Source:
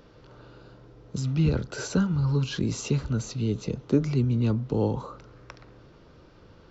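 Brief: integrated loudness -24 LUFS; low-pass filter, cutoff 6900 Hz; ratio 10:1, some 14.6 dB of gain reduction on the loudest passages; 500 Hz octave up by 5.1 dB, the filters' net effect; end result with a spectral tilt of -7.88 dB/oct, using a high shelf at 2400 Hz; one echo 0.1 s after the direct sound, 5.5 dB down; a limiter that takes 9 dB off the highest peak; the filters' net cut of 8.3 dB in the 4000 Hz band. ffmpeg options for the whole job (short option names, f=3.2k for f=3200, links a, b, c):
-af "lowpass=6.9k,equalizer=f=500:t=o:g=6.5,highshelf=f=2.4k:g=-5,equalizer=f=4k:t=o:g=-6,acompressor=threshold=-28dB:ratio=10,alimiter=level_in=1.5dB:limit=-24dB:level=0:latency=1,volume=-1.5dB,aecho=1:1:100:0.531,volume=11dB"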